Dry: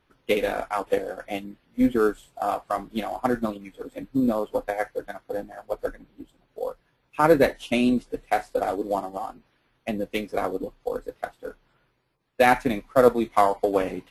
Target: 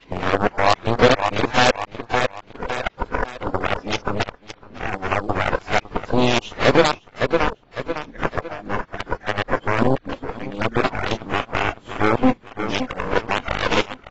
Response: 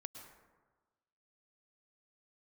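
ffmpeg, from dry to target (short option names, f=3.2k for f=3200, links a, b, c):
-filter_complex "[0:a]areverse,lowpass=6k,asplit=2[a][b];[b]acompressor=threshold=-30dB:ratio=12,volume=-3dB[c];[a][c]amix=inputs=2:normalize=0,aeval=exprs='0.708*(cos(1*acos(clip(val(0)/0.708,-1,1)))-cos(1*PI/2))+0.00631*(cos(2*acos(clip(val(0)/0.708,-1,1)))-cos(2*PI/2))+0.112*(cos(3*acos(clip(val(0)/0.708,-1,1)))-cos(3*PI/2))+0.0794*(cos(4*acos(clip(val(0)/0.708,-1,1)))-cos(4*PI/2))+0.0631*(cos(7*acos(clip(val(0)/0.708,-1,1)))-cos(7*PI/2))':c=same,asplit=2[d][e];[e]aecho=0:1:556|1112|1668:0.0794|0.0326|0.0134[f];[d][f]amix=inputs=2:normalize=0,aeval=exprs='0.794*sin(PI/2*2.51*val(0)/0.794)':c=same,alimiter=level_in=14dB:limit=-1dB:release=50:level=0:latency=1,volume=-4dB" -ar 22050 -c:a aac -b:a 24k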